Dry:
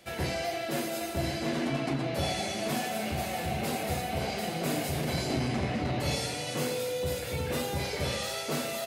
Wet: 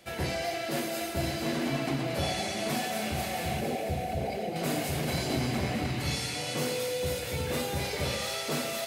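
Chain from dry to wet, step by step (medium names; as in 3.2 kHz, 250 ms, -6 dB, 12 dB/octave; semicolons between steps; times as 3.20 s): 3.60–4.56 s: resonances exaggerated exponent 2; 5.86–6.36 s: peaking EQ 590 Hz -8.5 dB 0.98 oct; feedback echo behind a high-pass 225 ms, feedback 73%, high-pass 1.4 kHz, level -7.5 dB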